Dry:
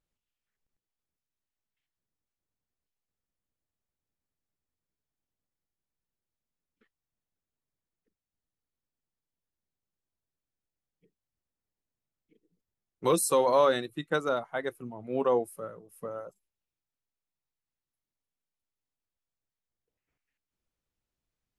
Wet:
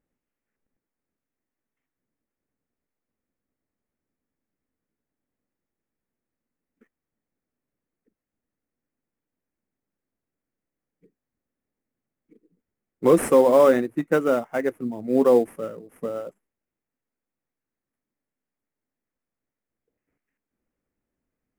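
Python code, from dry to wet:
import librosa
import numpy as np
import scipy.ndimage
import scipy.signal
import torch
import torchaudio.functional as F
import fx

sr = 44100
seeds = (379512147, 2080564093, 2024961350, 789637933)

p1 = fx.notch(x, sr, hz=980.0, q=24.0)
p2 = fx.sample_hold(p1, sr, seeds[0], rate_hz=4300.0, jitter_pct=20)
p3 = p1 + (p2 * librosa.db_to_amplitude(-3.5))
p4 = fx.graphic_eq_10(p3, sr, hz=(250, 500, 2000, 4000), db=(11, 5, 7, -10))
y = p4 * librosa.db_to_amplitude(-2.5)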